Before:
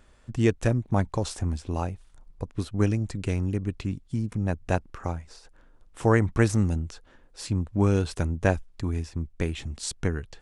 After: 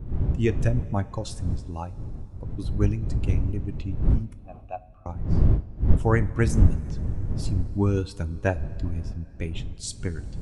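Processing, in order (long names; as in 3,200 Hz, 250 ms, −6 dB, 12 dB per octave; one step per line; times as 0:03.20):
spectral dynamics exaggerated over time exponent 1.5
wind on the microphone 87 Hz −25 dBFS
0:04.34–0:05.06: formant filter a
coupled-rooms reverb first 0.26 s, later 3.5 s, from −18 dB, DRR 11.5 dB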